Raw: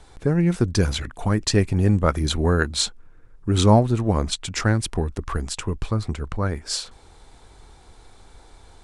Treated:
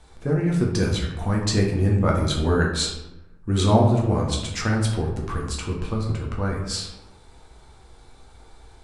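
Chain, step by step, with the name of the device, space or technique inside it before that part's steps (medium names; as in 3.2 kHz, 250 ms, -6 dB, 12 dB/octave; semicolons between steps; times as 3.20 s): bathroom (reverberation RT60 0.95 s, pre-delay 7 ms, DRR -2 dB); trim -5 dB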